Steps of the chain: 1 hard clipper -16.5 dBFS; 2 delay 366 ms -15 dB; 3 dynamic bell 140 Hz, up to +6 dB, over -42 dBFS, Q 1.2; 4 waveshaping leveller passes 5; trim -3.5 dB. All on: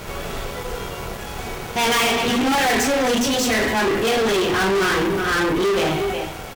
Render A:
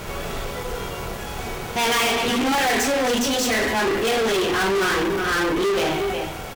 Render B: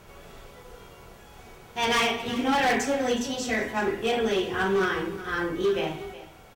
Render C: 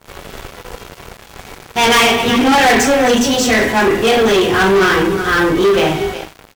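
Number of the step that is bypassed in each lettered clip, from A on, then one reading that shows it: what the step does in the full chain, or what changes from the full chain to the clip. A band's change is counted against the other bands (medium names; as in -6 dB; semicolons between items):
3, loudness change -2.0 LU; 4, crest factor change +7.5 dB; 1, distortion -10 dB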